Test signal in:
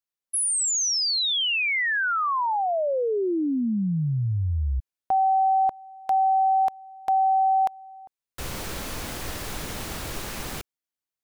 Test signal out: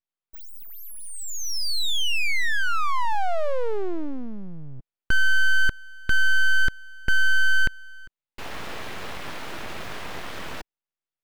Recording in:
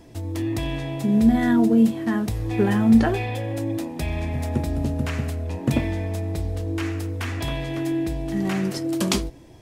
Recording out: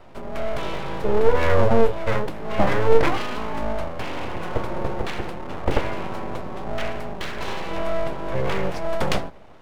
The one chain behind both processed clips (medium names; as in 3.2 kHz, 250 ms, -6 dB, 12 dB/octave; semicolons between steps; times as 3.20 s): three-band isolator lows -16 dB, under 160 Hz, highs -19 dB, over 2.8 kHz; full-wave rectifier; trim +5.5 dB